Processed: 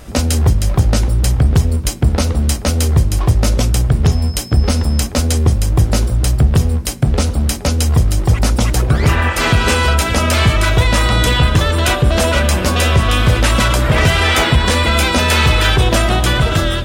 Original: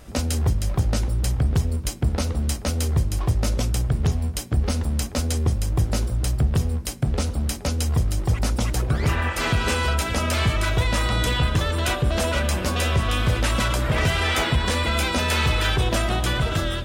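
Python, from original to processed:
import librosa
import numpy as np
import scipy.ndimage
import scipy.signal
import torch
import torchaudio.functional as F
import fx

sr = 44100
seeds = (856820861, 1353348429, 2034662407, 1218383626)

y = fx.dmg_tone(x, sr, hz=5200.0, level_db=-43.0, at=(4.04, 5.06), fade=0.02)
y = F.gain(torch.from_numpy(y), 9.0).numpy()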